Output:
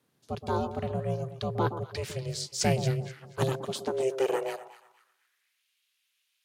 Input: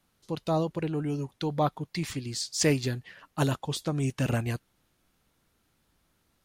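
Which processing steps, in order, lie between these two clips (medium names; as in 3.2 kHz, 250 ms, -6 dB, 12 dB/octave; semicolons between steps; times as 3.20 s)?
echo whose repeats swap between lows and highs 121 ms, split 960 Hz, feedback 54%, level -10 dB; ring modulator 260 Hz; high-pass sweep 130 Hz -> 2.7 kHz, 3.32–5.67 s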